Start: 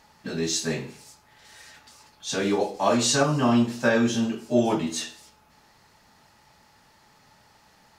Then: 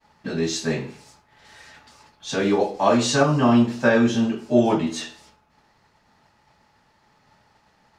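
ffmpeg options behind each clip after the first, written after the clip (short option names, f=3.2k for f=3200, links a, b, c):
-af "agate=range=-33dB:threshold=-52dB:ratio=3:detection=peak,aemphasis=mode=reproduction:type=50kf,volume=4dB"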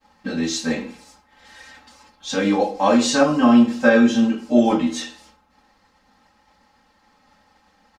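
-af "aecho=1:1:3.8:0.99,volume=-1dB"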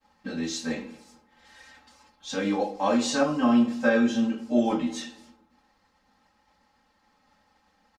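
-filter_complex "[0:a]asplit=2[a][b];[b]adelay=226,lowpass=f=840:p=1,volume=-20dB,asplit=2[c][d];[d]adelay=226,lowpass=f=840:p=1,volume=0.35,asplit=2[e][f];[f]adelay=226,lowpass=f=840:p=1,volume=0.35[g];[a][c][e][g]amix=inputs=4:normalize=0,volume=-7.5dB"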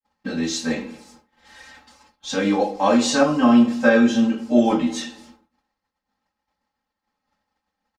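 -af "agate=range=-33dB:threshold=-53dB:ratio=3:detection=peak,volume=6.5dB"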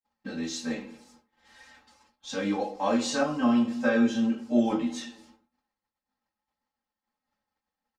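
-af "flanger=delay=7.8:depth=1.8:regen=65:speed=1.8:shape=triangular,volume=-4.5dB"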